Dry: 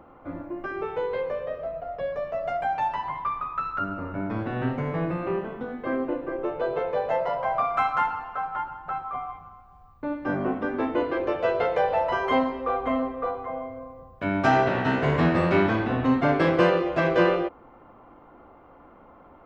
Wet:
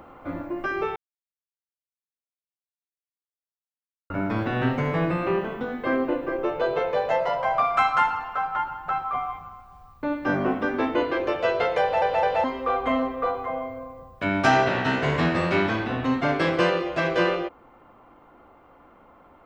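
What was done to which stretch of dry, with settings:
0:00.96–0:04.10: silence
0:11.81: stutter in place 0.21 s, 3 plays
whole clip: speech leveller within 3 dB 2 s; high-shelf EQ 2,200 Hz +10 dB

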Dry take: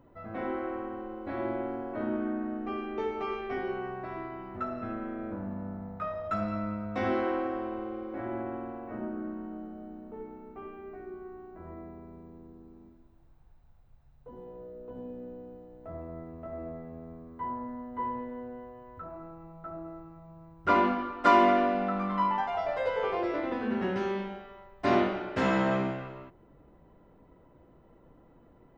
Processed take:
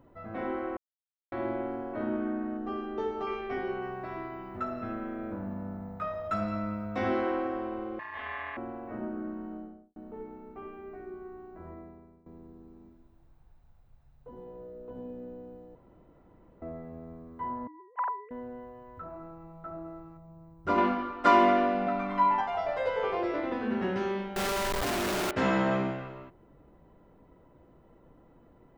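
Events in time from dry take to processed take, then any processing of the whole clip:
0:00.77–0:01.32: silence
0:02.57–0:03.27: parametric band 2,300 Hz −14 dB 0.3 octaves
0:03.82–0:06.96: high-shelf EQ 5,000 Hz +6 dB
0:07.99–0:08.57: ring modulation 1,400 Hz
0:09.52–0:09.96: fade out and dull
0:11.64–0:12.26: fade out, to −17 dB
0:15.75–0:16.62: fill with room tone
0:17.67–0:18.31: three sine waves on the formant tracks
0:20.17–0:20.78: parametric band 2,100 Hz −7.5 dB 2.6 octaves
0:21.86–0:22.41: comb filter 7.2 ms, depth 79%
0:24.36–0:25.31: sign of each sample alone

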